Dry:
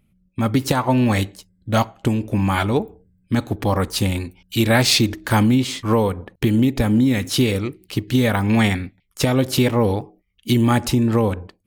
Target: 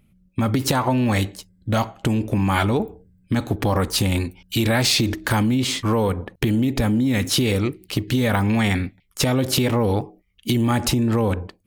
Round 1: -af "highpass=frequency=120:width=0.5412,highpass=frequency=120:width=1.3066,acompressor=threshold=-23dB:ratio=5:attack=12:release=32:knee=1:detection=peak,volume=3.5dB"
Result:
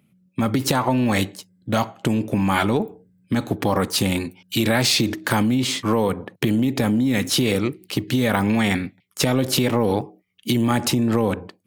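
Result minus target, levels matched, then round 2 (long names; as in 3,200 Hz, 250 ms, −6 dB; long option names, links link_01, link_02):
125 Hz band −3.0 dB
-af "acompressor=threshold=-23dB:ratio=5:attack=12:release=32:knee=1:detection=peak,volume=3.5dB"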